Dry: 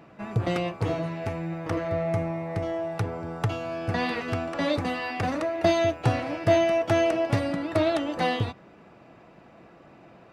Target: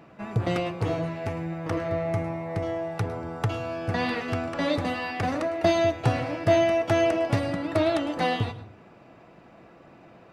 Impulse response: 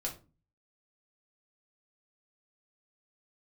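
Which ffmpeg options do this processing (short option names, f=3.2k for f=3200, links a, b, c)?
-filter_complex "[0:a]asplit=2[a][b];[1:a]atrim=start_sample=2205,adelay=105[c];[b][c]afir=irnorm=-1:irlink=0,volume=-15dB[d];[a][d]amix=inputs=2:normalize=0"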